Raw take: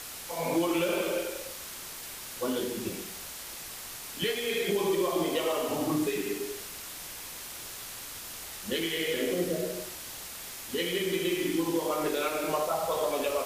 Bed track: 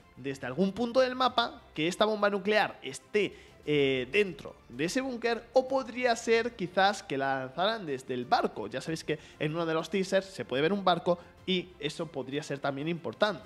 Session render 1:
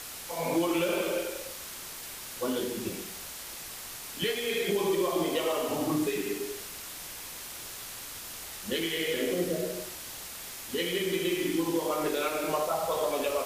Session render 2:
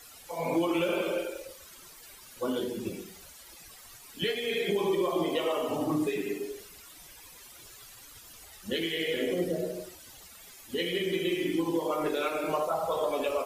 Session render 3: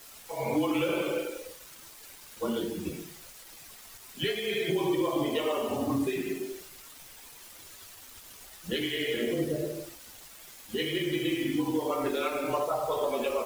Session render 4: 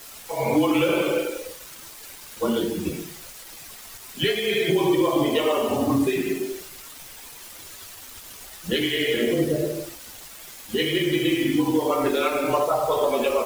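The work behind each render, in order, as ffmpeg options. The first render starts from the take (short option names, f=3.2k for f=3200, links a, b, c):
-af anull
-af "afftdn=nr=14:nf=-42"
-af "afreqshift=-27,acrusher=bits=7:mix=0:aa=0.000001"
-af "volume=7.5dB"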